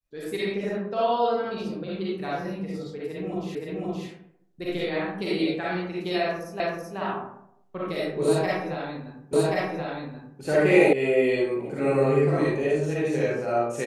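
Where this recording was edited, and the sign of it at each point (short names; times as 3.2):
3.55 repeat of the last 0.52 s
6.6 repeat of the last 0.38 s
9.33 repeat of the last 1.08 s
10.93 sound cut off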